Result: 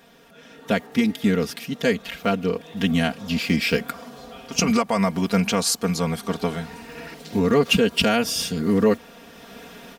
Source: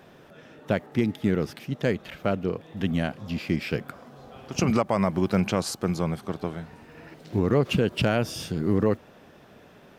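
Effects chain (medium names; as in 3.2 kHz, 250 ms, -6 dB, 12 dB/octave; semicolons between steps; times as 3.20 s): treble shelf 2.3 kHz +10 dB; comb 4.3 ms, depth 83%; level rider gain up to 11.5 dB; trim -5 dB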